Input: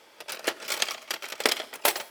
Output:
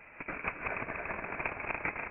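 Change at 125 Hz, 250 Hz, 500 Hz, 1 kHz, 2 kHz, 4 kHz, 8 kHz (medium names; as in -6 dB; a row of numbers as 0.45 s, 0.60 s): no reading, -3.5 dB, -8.0 dB, -4.5 dB, -3.5 dB, under -30 dB, under -40 dB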